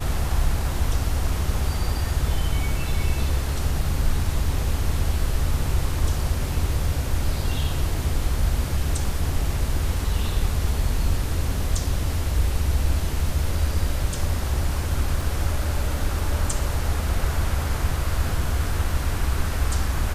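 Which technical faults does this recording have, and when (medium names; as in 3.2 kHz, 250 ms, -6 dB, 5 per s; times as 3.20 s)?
15.21 s: dropout 2.3 ms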